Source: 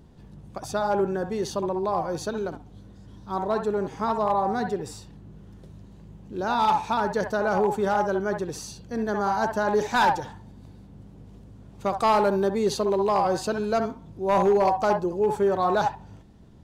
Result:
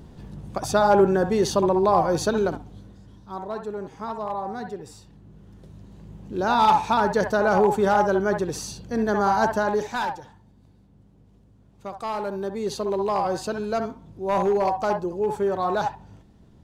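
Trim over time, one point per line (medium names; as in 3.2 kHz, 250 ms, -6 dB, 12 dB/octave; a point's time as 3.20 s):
2.48 s +7 dB
3.41 s -6 dB
4.85 s -6 dB
6.23 s +4 dB
9.50 s +4 dB
10.16 s -9 dB
12.09 s -9 dB
12.95 s -1.5 dB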